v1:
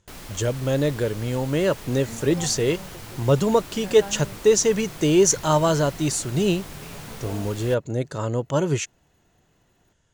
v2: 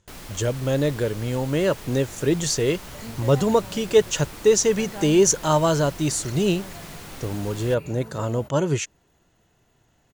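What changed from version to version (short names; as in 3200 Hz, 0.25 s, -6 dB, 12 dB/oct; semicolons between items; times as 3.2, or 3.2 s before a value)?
second sound: entry +0.95 s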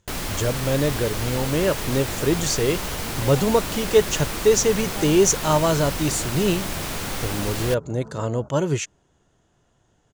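first sound +11.5 dB; second sound: add steep low-pass 1500 Hz 96 dB/oct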